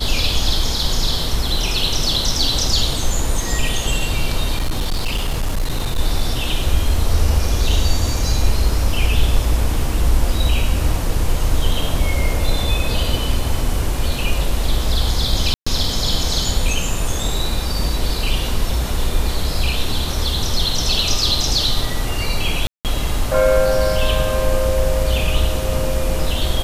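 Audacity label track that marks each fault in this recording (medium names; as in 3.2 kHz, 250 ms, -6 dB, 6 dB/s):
4.560000	5.990000	clipped -15 dBFS
15.540000	15.660000	dropout 125 ms
22.670000	22.850000	dropout 178 ms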